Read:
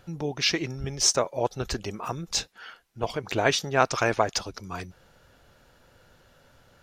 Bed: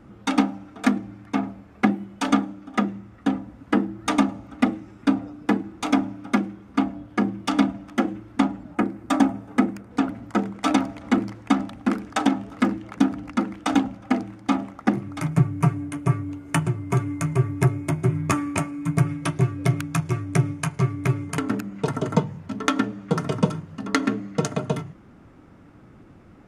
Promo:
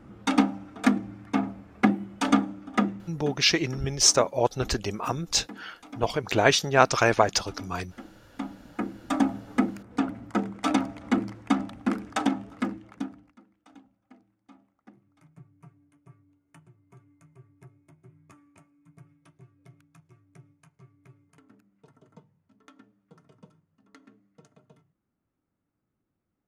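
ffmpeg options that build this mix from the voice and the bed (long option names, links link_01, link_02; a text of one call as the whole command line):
ffmpeg -i stem1.wav -i stem2.wav -filter_complex "[0:a]adelay=3000,volume=3dB[link_01];[1:a]volume=16.5dB,afade=type=out:start_time=2.86:duration=0.5:silence=0.0944061,afade=type=in:start_time=8.17:duration=1.18:silence=0.125893,afade=type=out:start_time=12.16:duration=1.2:silence=0.0375837[link_02];[link_01][link_02]amix=inputs=2:normalize=0" out.wav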